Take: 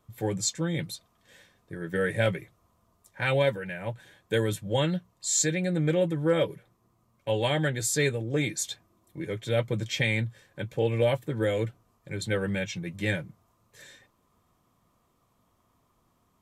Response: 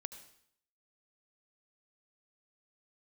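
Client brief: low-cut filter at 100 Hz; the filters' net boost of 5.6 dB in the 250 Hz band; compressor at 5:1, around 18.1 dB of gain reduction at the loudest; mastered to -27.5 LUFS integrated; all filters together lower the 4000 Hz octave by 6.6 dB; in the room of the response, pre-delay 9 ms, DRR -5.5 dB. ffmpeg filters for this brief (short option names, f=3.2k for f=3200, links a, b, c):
-filter_complex "[0:a]highpass=100,equalizer=f=250:t=o:g=9,equalizer=f=4k:t=o:g=-8.5,acompressor=threshold=-39dB:ratio=5,asplit=2[a][b];[1:a]atrim=start_sample=2205,adelay=9[c];[b][c]afir=irnorm=-1:irlink=0,volume=8.5dB[d];[a][d]amix=inputs=2:normalize=0,volume=7.5dB"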